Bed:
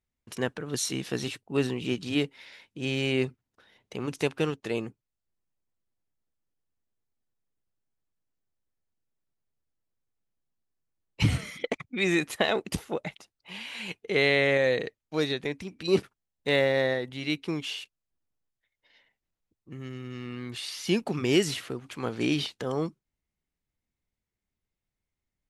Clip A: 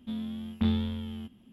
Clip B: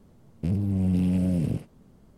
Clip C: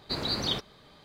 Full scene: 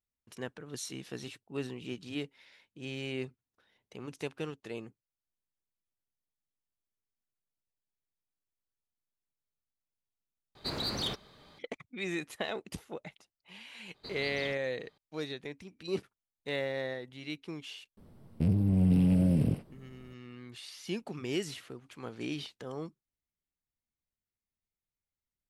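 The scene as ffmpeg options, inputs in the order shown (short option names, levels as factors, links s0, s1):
-filter_complex "[3:a]asplit=2[s0][s1];[0:a]volume=0.299[s2];[s0]asoftclip=type=tanh:threshold=0.0631[s3];[2:a]equalizer=f=6700:w=4.8:g=-14[s4];[s2]asplit=2[s5][s6];[s5]atrim=end=10.554[s7];[s3]atrim=end=1.04,asetpts=PTS-STARTPTS,volume=0.75[s8];[s6]atrim=start=11.586[s9];[s1]atrim=end=1.04,asetpts=PTS-STARTPTS,volume=0.188,afade=t=in:d=0.004:c=hsin,afade=t=out:st=1.036:d=0.004:c=hsin,adelay=13940[s10];[s4]atrim=end=2.17,asetpts=PTS-STARTPTS,volume=0.891,afade=t=in:d=0.004:c=hsin,afade=t=out:st=2.166:d=0.004:c=hsin,adelay=17970[s11];[s7][s8]acrossfade=d=0.004:c1=hsin:c2=hsin[s12];[s12][s9]acrossfade=d=0.004:c1=hsin:c2=hsin[s13];[s13][s10][s11]amix=inputs=3:normalize=0"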